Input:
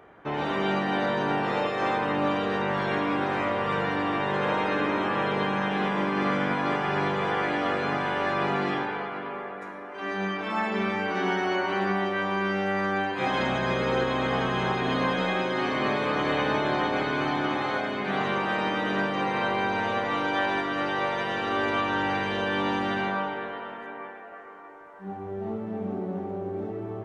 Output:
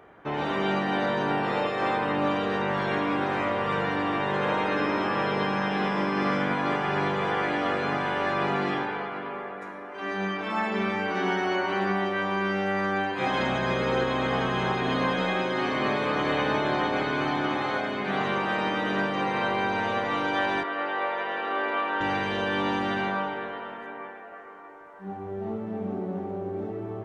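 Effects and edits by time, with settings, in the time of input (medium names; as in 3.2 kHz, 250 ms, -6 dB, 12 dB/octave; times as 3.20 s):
1.29–2.21 s: band-stop 6.4 kHz, Q 8.6
4.76–6.41 s: whistle 5.2 kHz -50 dBFS
20.63–22.01 s: band-pass 410–2600 Hz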